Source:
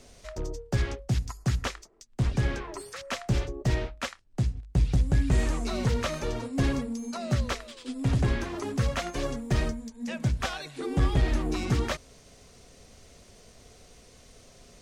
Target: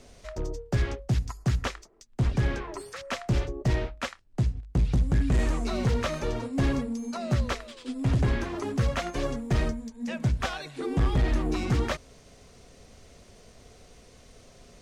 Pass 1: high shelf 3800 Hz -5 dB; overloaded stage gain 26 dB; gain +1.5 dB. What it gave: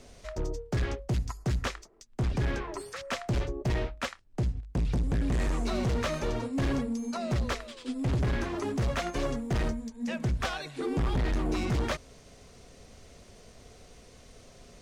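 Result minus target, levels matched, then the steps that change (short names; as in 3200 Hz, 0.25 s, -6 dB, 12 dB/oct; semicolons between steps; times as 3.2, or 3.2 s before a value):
overloaded stage: distortion +9 dB
change: overloaded stage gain 19.5 dB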